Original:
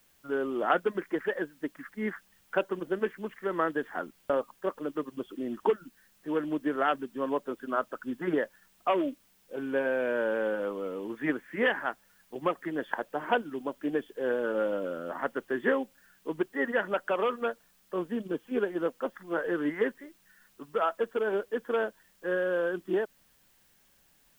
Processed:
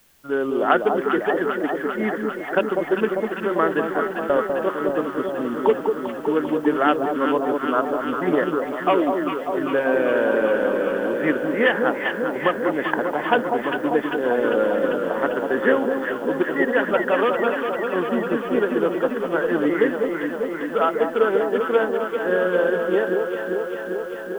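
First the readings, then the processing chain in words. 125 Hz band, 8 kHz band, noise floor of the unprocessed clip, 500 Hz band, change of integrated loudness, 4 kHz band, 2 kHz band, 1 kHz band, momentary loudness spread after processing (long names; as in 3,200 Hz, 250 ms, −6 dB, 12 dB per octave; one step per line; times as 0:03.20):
+10.0 dB, can't be measured, −65 dBFS, +10.5 dB, +10.0 dB, +10.0 dB, +10.0 dB, +10.0 dB, 5 LU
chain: delay that swaps between a low-pass and a high-pass 198 ms, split 1,000 Hz, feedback 87%, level −4 dB
level +7.5 dB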